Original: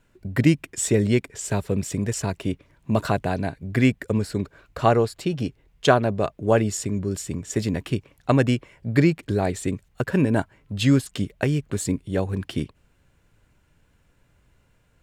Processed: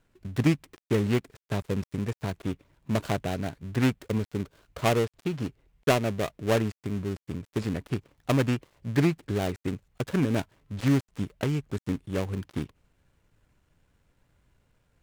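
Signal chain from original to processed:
gap after every zero crossing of 0.25 ms
highs frequency-modulated by the lows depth 0.17 ms
level −5 dB

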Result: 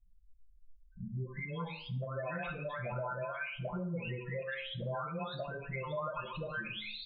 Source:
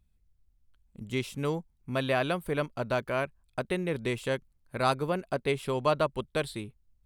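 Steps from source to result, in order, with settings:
every frequency bin delayed by itself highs late, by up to 958 ms
low-pass filter 3,800 Hz 24 dB per octave
hum removal 53.4 Hz, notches 17
gate on every frequency bin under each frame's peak −15 dB strong
parametric band 320 Hz −14 dB 0.9 octaves
downward compressor, threshold −45 dBFS, peak gain reduction 15.5 dB
dense smooth reverb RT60 0.57 s, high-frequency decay 0.6×, DRR 4 dB
level +7 dB

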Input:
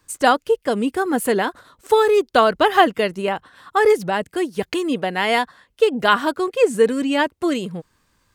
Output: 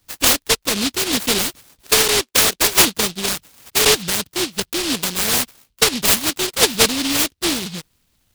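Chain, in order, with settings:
0:02.03–0:02.76: three-way crossover with the lows and the highs turned down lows −21 dB, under 300 Hz, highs −12 dB, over 2,400 Hz
short delay modulated by noise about 3,600 Hz, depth 0.47 ms

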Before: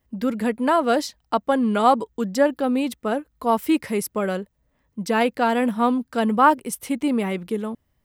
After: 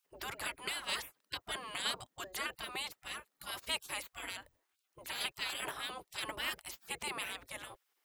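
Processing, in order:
0:04.31–0:05.25: mains-hum notches 50/100/150/200 Hz
gate on every frequency bin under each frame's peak −25 dB weak
level +1 dB

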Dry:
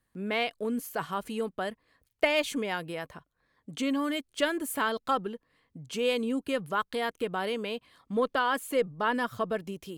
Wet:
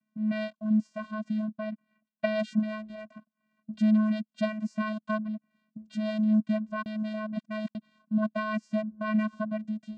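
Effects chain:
0:01.45–0:02.39: low-pass filter 3,500 Hz 24 dB per octave
channel vocoder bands 8, square 215 Hz
0:06.86–0:07.75: reverse
level +2 dB

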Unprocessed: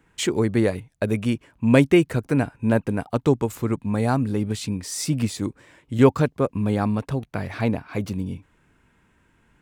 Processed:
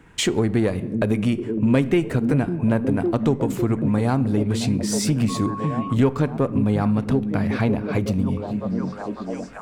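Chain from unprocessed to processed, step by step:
echo through a band-pass that steps 553 ms, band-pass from 190 Hz, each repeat 0.7 octaves, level −7 dB
in parallel at −6 dB: asymmetric clip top −26 dBFS
on the sum: high-shelf EQ 7,500 Hz −4.5 dB
on a send at −15.5 dB: convolution reverb RT60 0.80 s, pre-delay 4 ms
on the sum: downward compressor 2.5 to 1, threshold −29 dBFS, peak gain reduction 15 dB
0:05.28–0:05.93: steady tone 1,100 Hz −36 dBFS
low-shelf EQ 340 Hz +2.5 dB
level +6 dB

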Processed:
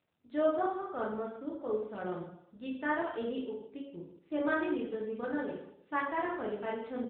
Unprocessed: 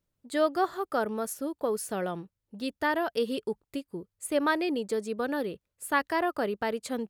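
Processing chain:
harmonic and percussive parts rebalanced percussive −4 dB
single-tap delay 117 ms −21.5 dB
dense smooth reverb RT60 0.74 s, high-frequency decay 0.9×, DRR −3.5 dB
level −9 dB
AMR narrowband 10.2 kbit/s 8,000 Hz

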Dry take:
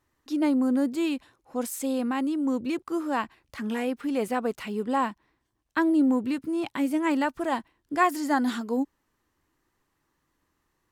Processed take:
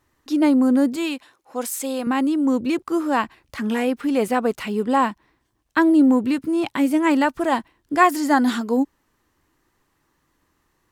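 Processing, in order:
0:00.96–0:02.07: high-pass filter 550 Hz 6 dB per octave
level +7 dB

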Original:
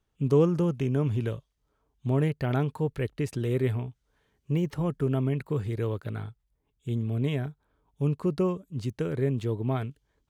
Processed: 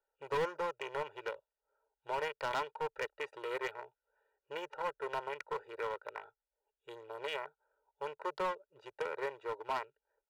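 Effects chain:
adaptive Wiener filter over 41 samples
inverse Chebyshev high-pass filter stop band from 240 Hz, stop band 60 dB
spectral tilt −4.5 dB per octave
comb filter 2.1 ms, depth 80%
in parallel at −2 dB: downward compressor, threshold −52 dBFS, peak gain reduction 20.5 dB
on the sum: hard clipping −35.5 dBFS, distortion −9 dB
level +5.5 dB

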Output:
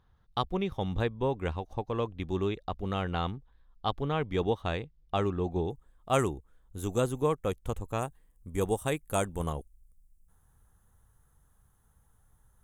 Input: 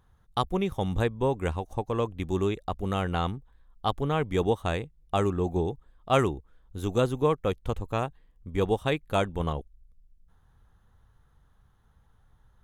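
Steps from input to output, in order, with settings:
high shelf with overshoot 6,100 Hz −8 dB, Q 1.5, from 0:05.70 +7 dB, from 0:08.01 +13.5 dB
level −3.5 dB

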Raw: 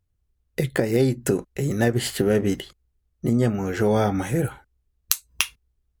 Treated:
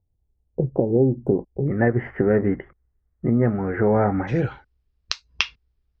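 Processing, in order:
elliptic low-pass filter 890 Hz, stop band 50 dB, from 0:01.66 2,000 Hz, from 0:04.27 5,200 Hz
level +2 dB

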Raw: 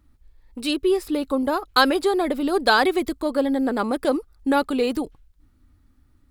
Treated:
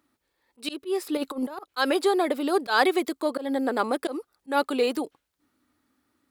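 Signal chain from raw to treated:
high-pass filter 330 Hz 12 dB per octave
0:01.17–0:01.66: compressor whose output falls as the input rises −29 dBFS, ratio −0.5
volume swells 140 ms

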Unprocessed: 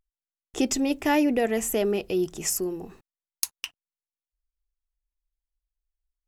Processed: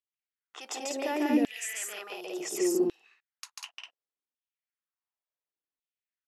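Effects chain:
low-pass that shuts in the quiet parts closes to 2,900 Hz, open at −20 dBFS
brickwall limiter −22 dBFS, peak gain reduction 9 dB
on a send: loudspeakers that aren't time-aligned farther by 49 metres −1 dB, 67 metres −2 dB
on the sum: auto-filter high-pass saw down 0.69 Hz 230–3,400 Hz
level −4.5 dB

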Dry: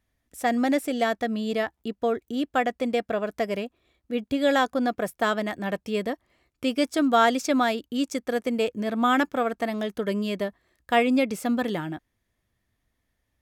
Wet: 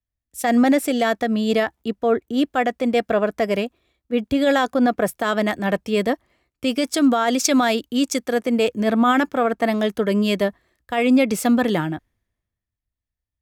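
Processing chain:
brickwall limiter −19.5 dBFS, peak gain reduction 12 dB
multiband upward and downward expander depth 70%
level +9 dB

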